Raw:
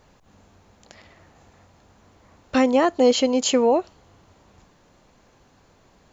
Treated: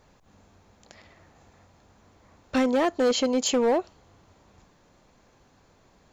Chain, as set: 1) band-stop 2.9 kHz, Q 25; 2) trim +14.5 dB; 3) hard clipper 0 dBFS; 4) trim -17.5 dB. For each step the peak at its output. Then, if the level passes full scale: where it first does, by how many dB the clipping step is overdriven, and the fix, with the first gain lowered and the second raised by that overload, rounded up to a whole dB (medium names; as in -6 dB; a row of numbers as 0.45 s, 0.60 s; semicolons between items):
-7.5 dBFS, +7.0 dBFS, 0.0 dBFS, -17.5 dBFS; step 2, 7.0 dB; step 2 +7.5 dB, step 4 -10.5 dB